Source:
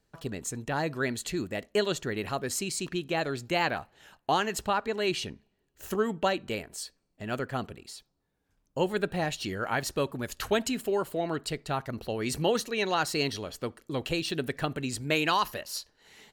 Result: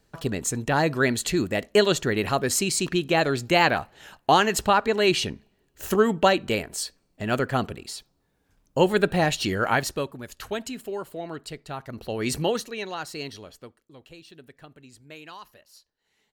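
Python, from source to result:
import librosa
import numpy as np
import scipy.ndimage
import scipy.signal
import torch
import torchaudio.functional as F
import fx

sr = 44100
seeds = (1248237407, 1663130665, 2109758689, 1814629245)

y = fx.gain(x, sr, db=fx.line((9.71, 8.0), (10.17, -4.0), (11.78, -4.0), (12.28, 5.0), (12.93, -6.0), (13.49, -6.0), (13.91, -17.0)))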